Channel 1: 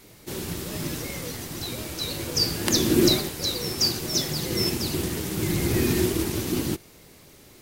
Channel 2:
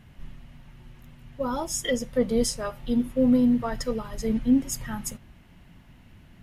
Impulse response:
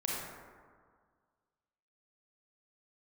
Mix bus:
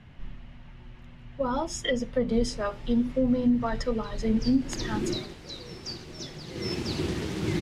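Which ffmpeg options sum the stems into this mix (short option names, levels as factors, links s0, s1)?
-filter_complex "[0:a]adelay=2050,volume=0.841,afade=t=in:st=4.11:d=0.49:silence=0.446684,afade=t=in:st=6.44:d=0.49:silence=0.316228[s0];[1:a]bandreject=f=50:t=h:w=6,bandreject=f=100:t=h:w=6,bandreject=f=150:t=h:w=6,bandreject=f=200:t=h:w=6,bandreject=f=250:t=h:w=6,bandreject=f=300:t=h:w=6,bandreject=f=350:t=h:w=6,bandreject=f=400:t=h:w=6,bandreject=f=450:t=h:w=6,volume=1.26[s1];[s0][s1]amix=inputs=2:normalize=0,lowpass=4500,acrossover=split=180[s2][s3];[s3]acompressor=threshold=0.0708:ratio=5[s4];[s2][s4]amix=inputs=2:normalize=0"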